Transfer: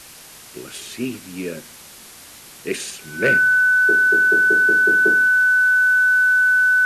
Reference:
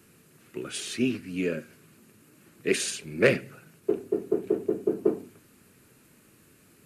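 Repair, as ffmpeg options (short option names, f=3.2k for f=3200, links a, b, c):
-af "bandreject=f=1.5k:w=30,afwtdn=0.01"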